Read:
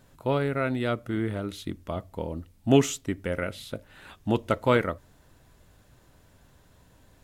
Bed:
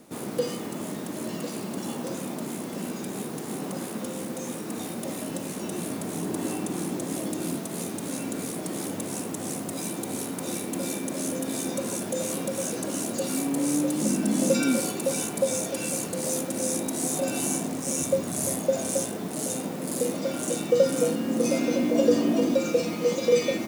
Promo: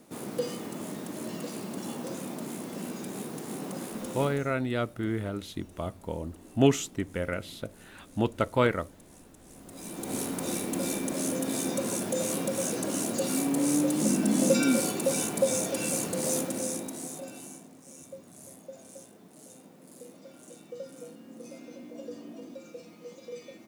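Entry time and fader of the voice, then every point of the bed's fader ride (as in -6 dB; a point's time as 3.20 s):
3.90 s, -2.0 dB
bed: 4.23 s -4 dB
4.59 s -22 dB
9.45 s -22 dB
10.15 s -0.5 dB
16.40 s -0.5 dB
17.70 s -21 dB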